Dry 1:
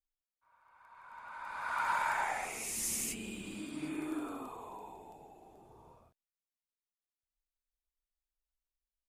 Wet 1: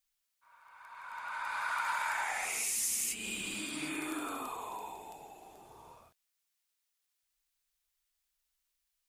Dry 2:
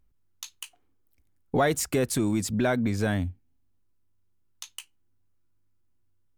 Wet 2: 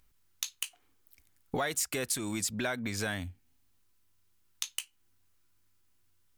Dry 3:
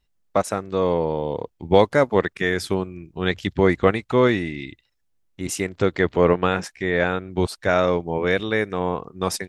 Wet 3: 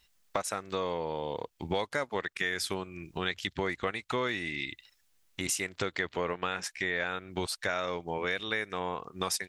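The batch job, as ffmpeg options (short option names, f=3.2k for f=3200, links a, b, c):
-filter_complex "[0:a]tiltshelf=f=880:g=-7.5,asplit=2[a][b];[b]alimiter=limit=-11dB:level=0:latency=1:release=282,volume=-1dB[c];[a][c]amix=inputs=2:normalize=0,acompressor=threshold=-34dB:ratio=3"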